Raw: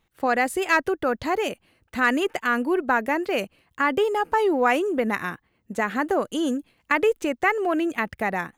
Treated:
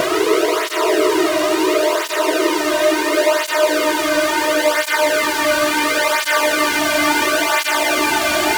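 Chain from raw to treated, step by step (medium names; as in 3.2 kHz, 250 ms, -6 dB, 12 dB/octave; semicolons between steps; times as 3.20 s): rotating-head pitch shifter +3.5 st; peak limiter -20 dBFS, peak gain reduction 11.5 dB; fuzz box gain 56 dB, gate -59 dBFS; pre-echo 268 ms -16 dB; Paulstretch 46×, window 0.25 s, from 4.53 s; cancelling through-zero flanger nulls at 0.72 Hz, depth 2.4 ms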